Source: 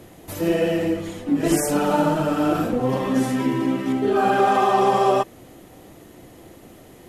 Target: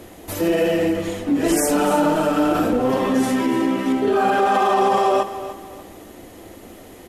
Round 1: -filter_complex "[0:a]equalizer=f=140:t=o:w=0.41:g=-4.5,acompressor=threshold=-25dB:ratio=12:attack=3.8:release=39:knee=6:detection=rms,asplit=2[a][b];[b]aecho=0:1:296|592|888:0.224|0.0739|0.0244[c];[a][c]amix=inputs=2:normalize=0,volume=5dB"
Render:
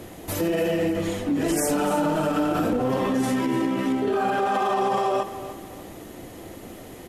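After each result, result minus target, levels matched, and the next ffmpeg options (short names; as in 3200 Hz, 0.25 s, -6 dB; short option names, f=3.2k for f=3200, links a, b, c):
compressor: peak gain reduction +6.5 dB; 125 Hz band +5.0 dB
-filter_complex "[0:a]equalizer=f=140:t=o:w=0.41:g=-4.5,acompressor=threshold=-18dB:ratio=12:attack=3.8:release=39:knee=6:detection=rms,asplit=2[a][b];[b]aecho=0:1:296|592|888:0.224|0.0739|0.0244[c];[a][c]amix=inputs=2:normalize=0,volume=5dB"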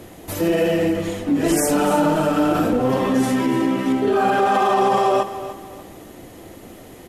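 125 Hz band +4.0 dB
-filter_complex "[0:a]equalizer=f=140:t=o:w=0.41:g=-14,acompressor=threshold=-18dB:ratio=12:attack=3.8:release=39:knee=6:detection=rms,asplit=2[a][b];[b]aecho=0:1:296|592|888:0.224|0.0739|0.0244[c];[a][c]amix=inputs=2:normalize=0,volume=5dB"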